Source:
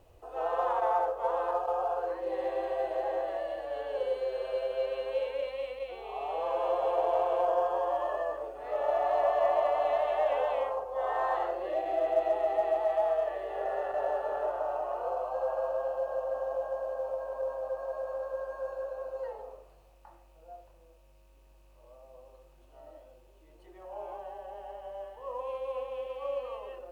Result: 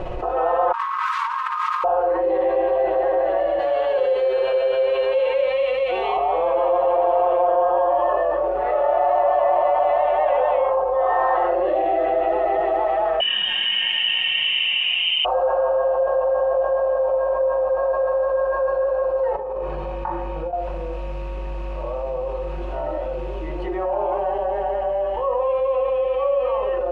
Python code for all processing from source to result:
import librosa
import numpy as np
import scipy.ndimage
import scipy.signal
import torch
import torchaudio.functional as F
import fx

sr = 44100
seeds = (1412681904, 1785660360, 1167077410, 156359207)

y = fx.chain(x, sr, fx.delta_hold(step_db=-42.0),
    fx.brickwall_highpass(low_hz=930.0),
    fx.over_compress(threshold_db=-44.0, ratio=-0.5), at=(0.72, 1.84))
y = fx.chain(y, sr, fx.highpass(hz=60.0, slope=24),
    fx.high_shelf(hz=2600.0, db=12.0), at=(3.59, 6.17))
y = fx.chain(y, sr, fx.freq_invert(carrier_hz=3600),
    fx.echo_crushed(ms=105, feedback_pct=80, bits=9, wet_db=-9.5), at=(13.2, 15.25))
y = fx.chain(y, sr, fx.high_shelf(hz=3400.0, db=-8.5),
    fx.over_compress(threshold_db=-54.0, ratio=-1.0),
    fx.notch_comb(f0_hz=680.0), at=(19.36, 20.53))
y = scipy.signal.sosfilt(scipy.signal.butter(2, 2300.0, 'lowpass', fs=sr, output='sos'), y)
y = y + 0.62 * np.pad(y, (int(5.5 * sr / 1000.0), 0))[:len(y)]
y = fx.env_flatten(y, sr, amount_pct=70)
y = y * librosa.db_to_amplitude(4.5)